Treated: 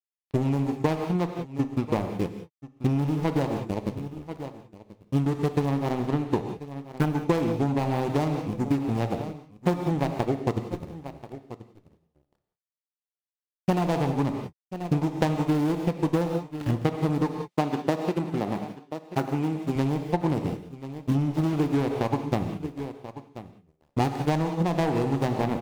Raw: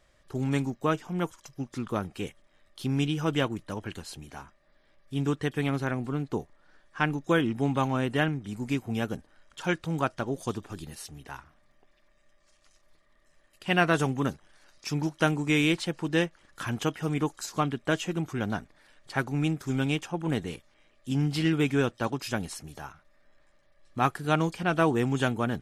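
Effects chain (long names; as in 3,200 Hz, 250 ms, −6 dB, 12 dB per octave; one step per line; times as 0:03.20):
running median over 41 samples
dead-zone distortion −41.5 dBFS
parametric band 1,500 Hz −5.5 dB 0.45 octaves
reverb whose tail is shaped and stops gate 210 ms flat, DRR 5.5 dB
dynamic equaliser 840 Hz, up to +7 dB, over −47 dBFS, Q 1.6
single-tap delay 1,034 ms −18.5 dB
soft clipping −21.5 dBFS, distortion −15 dB
downward compressor, threshold −31 dBFS, peak gain reduction 6.5 dB
0:17.48–0:19.76: high-pass filter 170 Hz 12 dB per octave
transient designer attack +5 dB, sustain −3 dB
level +8.5 dB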